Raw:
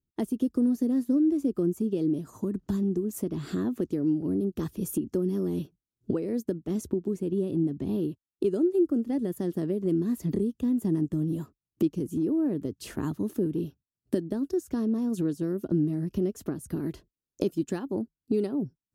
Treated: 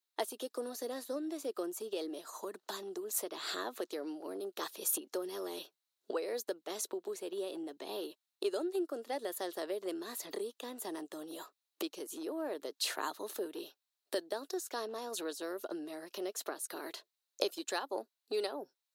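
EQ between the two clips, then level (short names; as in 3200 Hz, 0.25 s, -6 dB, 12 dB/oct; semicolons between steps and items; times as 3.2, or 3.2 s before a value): HPF 580 Hz 24 dB/oct; bell 4000 Hz +9.5 dB 0.33 oct; +5.0 dB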